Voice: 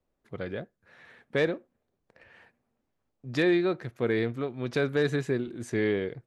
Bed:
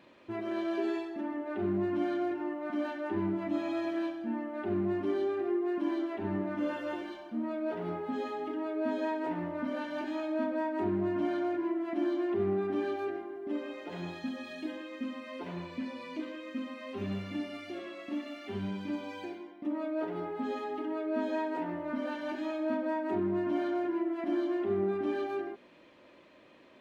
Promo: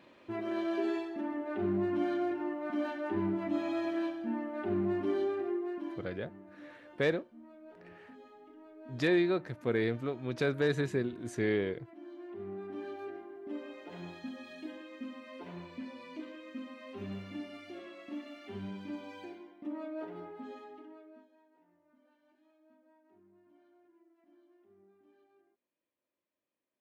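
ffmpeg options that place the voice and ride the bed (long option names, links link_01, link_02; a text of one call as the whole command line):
ffmpeg -i stem1.wav -i stem2.wav -filter_complex "[0:a]adelay=5650,volume=-3.5dB[link_01];[1:a]volume=13dB,afade=type=out:start_time=5.21:duration=0.97:silence=0.11885,afade=type=in:start_time=12.02:duration=1.43:silence=0.211349,afade=type=out:start_time=19.76:duration=1.52:silence=0.0375837[link_02];[link_01][link_02]amix=inputs=2:normalize=0" out.wav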